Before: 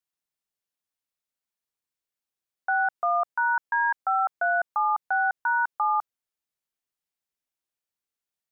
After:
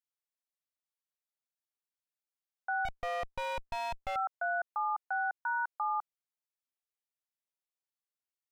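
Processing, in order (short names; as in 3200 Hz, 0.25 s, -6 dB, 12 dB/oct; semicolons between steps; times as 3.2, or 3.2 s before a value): Chebyshev high-pass 550 Hz, order 2; 2.85–4.16 running maximum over 17 samples; gain -8.5 dB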